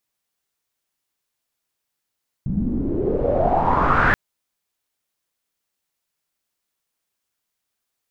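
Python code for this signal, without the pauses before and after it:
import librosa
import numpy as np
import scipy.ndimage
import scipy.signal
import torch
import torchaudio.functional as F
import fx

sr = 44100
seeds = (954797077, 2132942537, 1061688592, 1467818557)

y = fx.riser_noise(sr, seeds[0], length_s=1.68, colour='pink', kind='lowpass', start_hz=180.0, end_hz=1700.0, q=6.1, swell_db=7, law='exponential')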